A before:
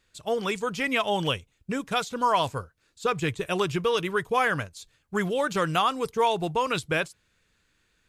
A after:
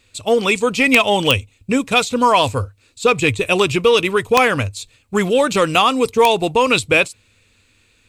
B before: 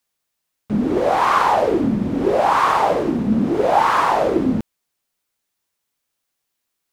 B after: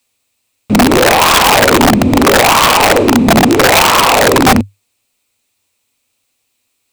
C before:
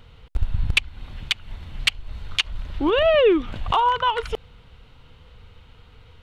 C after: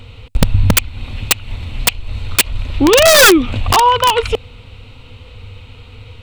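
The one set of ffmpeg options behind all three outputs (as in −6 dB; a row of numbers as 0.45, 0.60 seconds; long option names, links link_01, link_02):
-af "equalizer=frequency=100:width_type=o:width=0.33:gain=12,equalizer=frequency=160:width_type=o:width=0.33:gain=-7,equalizer=frequency=250:width_type=o:width=0.33:gain=7,equalizer=frequency=500:width_type=o:width=0.33:gain=4,equalizer=frequency=1600:width_type=o:width=0.33:gain=-6,equalizer=frequency=2500:width_type=o:width=0.33:gain=9,equalizer=frequency=4000:width_type=o:width=0.33:gain=5,equalizer=frequency=8000:width_type=o:width=0.33:gain=7,aeval=exprs='(mod(2.99*val(0)+1,2)-1)/2.99':channel_layout=same,acontrast=90,volume=2dB"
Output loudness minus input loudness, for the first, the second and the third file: +11.0, +10.0, +10.0 LU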